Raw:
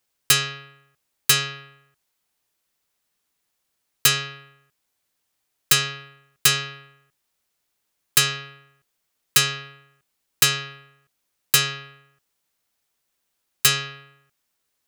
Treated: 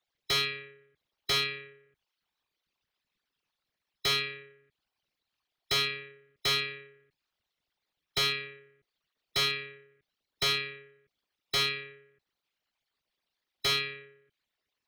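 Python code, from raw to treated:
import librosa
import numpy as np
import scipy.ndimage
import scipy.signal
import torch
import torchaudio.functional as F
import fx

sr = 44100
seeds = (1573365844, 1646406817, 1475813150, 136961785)

y = fx.envelope_sharpen(x, sr, power=3.0)
y = fx.high_shelf_res(y, sr, hz=4300.0, db=-12.5, q=1.5)
y = fx.formant_shift(y, sr, semitones=5)
y = fx.slew_limit(y, sr, full_power_hz=310.0)
y = F.gain(torch.from_numpy(y), -4.0).numpy()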